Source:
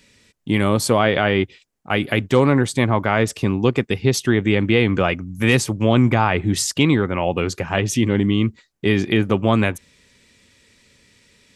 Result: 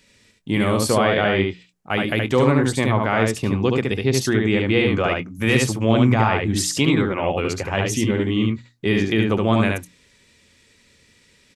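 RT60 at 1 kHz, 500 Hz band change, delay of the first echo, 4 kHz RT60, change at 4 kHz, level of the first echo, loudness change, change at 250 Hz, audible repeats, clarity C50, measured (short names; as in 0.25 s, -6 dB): none, -0.5 dB, 72 ms, none, -0.5 dB, -3.0 dB, -1.0 dB, -1.0 dB, 1, none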